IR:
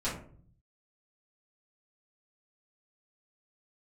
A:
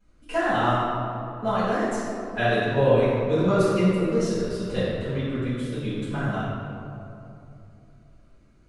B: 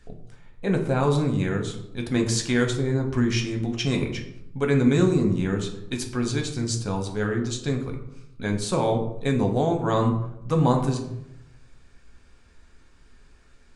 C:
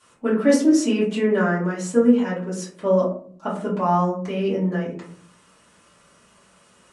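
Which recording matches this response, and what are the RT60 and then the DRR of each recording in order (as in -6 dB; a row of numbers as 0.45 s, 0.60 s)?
C; 2.8 s, 0.85 s, 0.50 s; -15.5 dB, 2.5 dB, -10.5 dB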